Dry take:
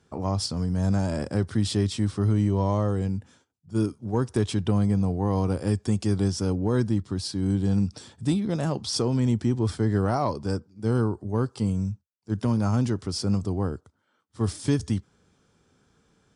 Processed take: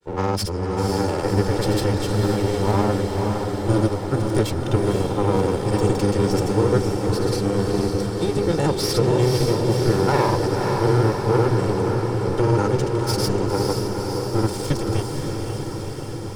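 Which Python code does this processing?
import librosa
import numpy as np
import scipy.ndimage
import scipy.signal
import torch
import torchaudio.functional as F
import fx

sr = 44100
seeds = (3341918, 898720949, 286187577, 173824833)

y = fx.lower_of_two(x, sr, delay_ms=2.2)
y = fx.granulator(y, sr, seeds[0], grain_ms=100.0, per_s=20.0, spray_ms=100.0, spread_st=0)
y = fx.echo_diffused(y, sr, ms=525, feedback_pct=72, wet_db=-4)
y = F.gain(torch.from_numpy(y), 6.5).numpy()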